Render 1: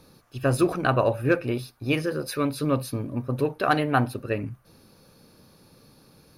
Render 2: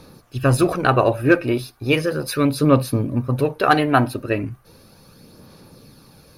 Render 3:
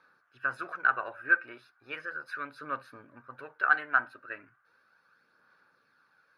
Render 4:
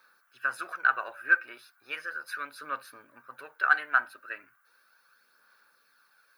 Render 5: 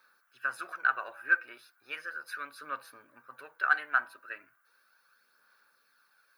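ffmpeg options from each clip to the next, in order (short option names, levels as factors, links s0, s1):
-af "aphaser=in_gain=1:out_gain=1:delay=3.2:decay=0.33:speed=0.36:type=sinusoidal,volume=2"
-af "bandpass=f=1500:t=q:w=7.3:csg=0"
-af "aemphasis=mode=production:type=riaa"
-af "bandreject=f=163.8:t=h:w=4,bandreject=f=327.6:t=h:w=4,bandreject=f=491.4:t=h:w=4,bandreject=f=655.2:t=h:w=4,bandreject=f=819:t=h:w=4,bandreject=f=982.8:t=h:w=4,bandreject=f=1146.6:t=h:w=4,volume=0.708"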